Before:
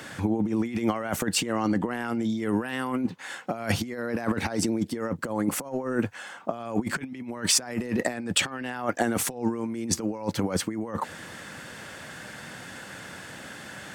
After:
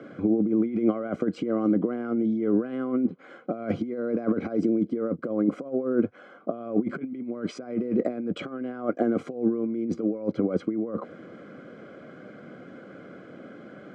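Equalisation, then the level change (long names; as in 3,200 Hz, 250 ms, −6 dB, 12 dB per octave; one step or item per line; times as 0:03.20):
moving average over 49 samples
high-pass filter 290 Hz 12 dB per octave
high-frequency loss of the air 110 metres
+9.0 dB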